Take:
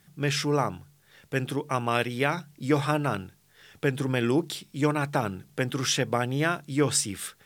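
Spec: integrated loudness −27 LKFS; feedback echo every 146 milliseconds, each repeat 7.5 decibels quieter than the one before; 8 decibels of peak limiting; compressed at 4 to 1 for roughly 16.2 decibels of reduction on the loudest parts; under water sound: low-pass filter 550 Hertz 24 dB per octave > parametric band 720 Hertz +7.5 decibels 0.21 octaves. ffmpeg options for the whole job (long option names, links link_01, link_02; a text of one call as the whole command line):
ffmpeg -i in.wav -af "acompressor=threshold=-39dB:ratio=4,alimiter=level_in=6dB:limit=-24dB:level=0:latency=1,volume=-6dB,lowpass=frequency=550:width=0.5412,lowpass=frequency=550:width=1.3066,equalizer=frequency=720:width_type=o:width=0.21:gain=7.5,aecho=1:1:146|292|438|584|730:0.422|0.177|0.0744|0.0312|0.0131,volume=17.5dB" out.wav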